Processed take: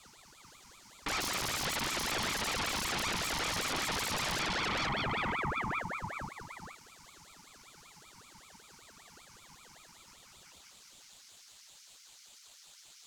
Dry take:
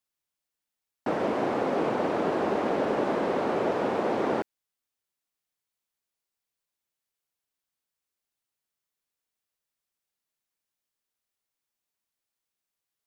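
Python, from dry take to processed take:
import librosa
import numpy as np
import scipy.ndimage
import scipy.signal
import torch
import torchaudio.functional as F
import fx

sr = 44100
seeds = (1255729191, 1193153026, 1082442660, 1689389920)

p1 = fx.filter_sweep_highpass(x, sr, from_hz=540.0, to_hz=3100.0, start_s=9.81, end_s=10.82, q=1.8)
p2 = fx.vowel_filter(p1, sr, vowel='e')
p3 = fx.over_compress(p2, sr, threshold_db=-52.0, ratio=-0.5)
p4 = p2 + (p3 * 10.0 ** (-3.0 / 20.0))
p5 = fx.peak_eq(p4, sr, hz=270.0, db=11.0, octaves=1.8, at=(1.2, 1.66))
p6 = fx.echo_feedback(p5, sr, ms=465, feedback_pct=42, wet_db=-5)
p7 = 10.0 ** (-32.5 / 20.0) * np.tanh(p6 / 10.0 ** (-32.5 / 20.0))
p8 = fx.high_shelf_res(p7, sr, hz=4200.0, db=9.0, q=3.0)
p9 = fx.fold_sine(p8, sr, drive_db=17, ceiling_db=-27.5)
y = fx.ring_lfo(p9, sr, carrier_hz=1100.0, swing_pct=70, hz=5.2)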